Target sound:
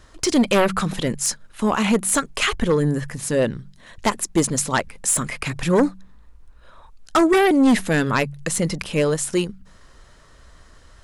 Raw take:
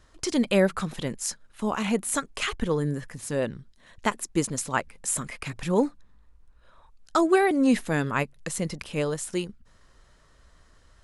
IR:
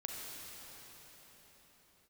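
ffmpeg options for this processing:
-af "aeval=exprs='0.398*sin(PI/2*2.51*val(0)/0.398)':c=same,bandreject=f=47.35:t=h:w=4,bandreject=f=94.7:t=h:w=4,bandreject=f=142.05:t=h:w=4,bandreject=f=189.4:t=h:w=4,volume=0.708"

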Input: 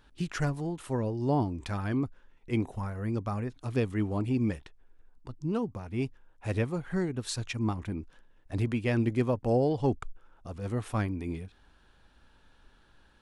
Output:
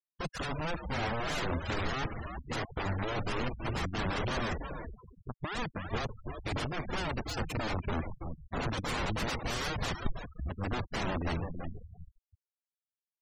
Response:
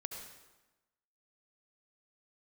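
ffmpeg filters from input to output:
-filter_complex "[0:a]acompressor=mode=upward:threshold=0.00631:ratio=2.5,aresample=16000,aeval=exprs='sgn(val(0))*max(abs(val(0))-0.00596,0)':c=same,aresample=44100,acontrast=27,aeval=exprs='(mod(21.1*val(0)+1,2)-1)/21.1':c=same,asplit=6[s0][s1][s2][s3][s4][s5];[s1]adelay=330,afreqshift=-79,volume=0.501[s6];[s2]adelay=660,afreqshift=-158,volume=0.2[s7];[s3]adelay=990,afreqshift=-237,volume=0.0804[s8];[s4]adelay=1320,afreqshift=-316,volume=0.032[s9];[s5]adelay=1650,afreqshift=-395,volume=0.0129[s10];[s0][s6][s7][s8][s9][s10]amix=inputs=6:normalize=0,asplit=2[s11][s12];[1:a]atrim=start_sample=2205,afade=t=out:st=0.33:d=0.01,atrim=end_sample=14994[s13];[s12][s13]afir=irnorm=-1:irlink=0,volume=0.224[s14];[s11][s14]amix=inputs=2:normalize=0,afftfilt=real='re*gte(hypot(re,im),0.0282)':imag='im*gte(hypot(re,im),0.0282)':win_size=1024:overlap=0.75,lowshelf=f=200:g=7,volume=0.631"

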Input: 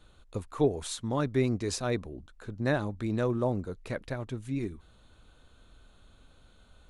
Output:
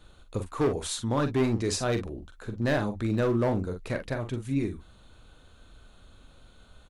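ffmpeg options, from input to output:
-filter_complex "[0:a]asoftclip=type=hard:threshold=0.0631,asplit=2[s0][s1];[s1]aecho=0:1:43|54:0.398|0.141[s2];[s0][s2]amix=inputs=2:normalize=0,volume=1.5"

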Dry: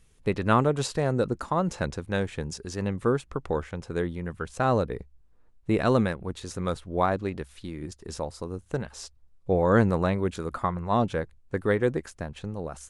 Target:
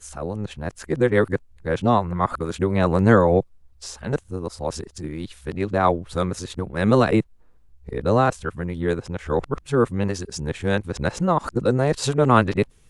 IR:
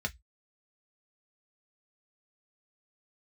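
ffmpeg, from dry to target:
-af "areverse,volume=1.88"

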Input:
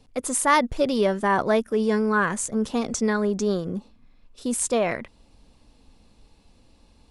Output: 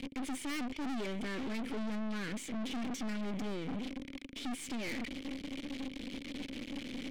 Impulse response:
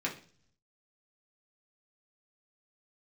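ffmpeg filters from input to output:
-filter_complex "[0:a]aeval=exprs='val(0)+0.5*0.0501*sgn(val(0))':c=same,asplit=3[s0][s1][s2];[s0]bandpass=f=270:t=q:w=8,volume=1[s3];[s1]bandpass=f=2290:t=q:w=8,volume=0.501[s4];[s2]bandpass=f=3010:t=q:w=8,volume=0.355[s5];[s3][s4][s5]amix=inputs=3:normalize=0,aeval=exprs='(tanh(178*val(0)+0.65)-tanh(0.65))/178':c=same,volume=2.66"

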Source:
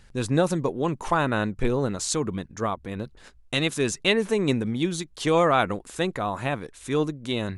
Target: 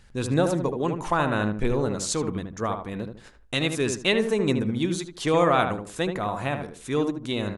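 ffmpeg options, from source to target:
-filter_complex "[0:a]asplit=2[s0][s1];[s1]adelay=76,lowpass=f=1500:p=1,volume=0.531,asplit=2[s2][s3];[s3]adelay=76,lowpass=f=1500:p=1,volume=0.3,asplit=2[s4][s5];[s5]adelay=76,lowpass=f=1500:p=1,volume=0.3,asplit=2[s6][s7];[s7]adelay=76,lowpass=f=1500:p=1,volume=0.3[s8];[s0][s2][s4][s6][s8]amix=inputs=5:normalize=0,volume=0.891"

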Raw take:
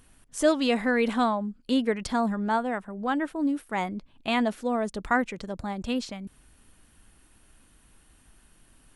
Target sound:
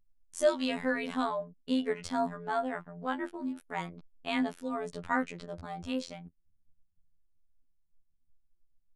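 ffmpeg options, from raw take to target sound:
-af "flanger=delay=6.6:depth=7:regen=62:speed=0.25:shape=triangular,afftfilt=real='hypot(re,im)*cos(PI*b)':imag='0':win_size=2048:overlap=0.75,anlmdn=0.000631,volume=1.19"

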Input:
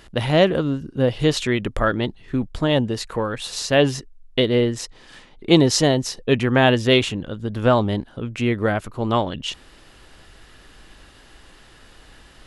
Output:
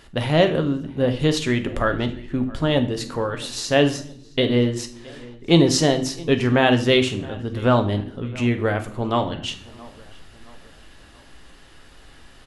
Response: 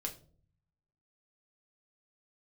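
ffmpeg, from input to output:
-filter_complex "[0:a]asplit=2[s0][s1];[s1]adelay=670,lowpass=f=3300:p=1,volume=0.0841,asplit=2[s2][s3];[s3]adelay=670,lowpass=f=3300:p=1,volume=0.47,asplit=2[s4][s5];[s5]adelay=670,lowpass=f=3300:p=1,volume=0.47[s6];[s0][s2][s4][s6]amix=inputs=4:normalize=0,asplit=2[s7][s8];[1:a]atrim=start_sample=2205,asetrate=24696,aresample=44100[s9];[s8][s9]afir=irnorm=-1:irlink=0,volume=0.75[s10];[s7][s10]amix=inputs=2:normalize=0,volume=0.473"

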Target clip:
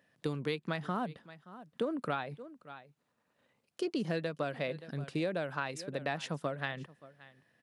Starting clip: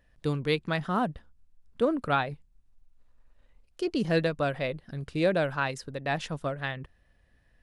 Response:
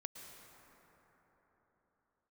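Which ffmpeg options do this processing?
-af "highpass=f=140:w=0.5412,highpass=f=140:w=1.3066,aecho=1:1:574:0.0708,acompressor=threshold=0.0316:ratio=10"

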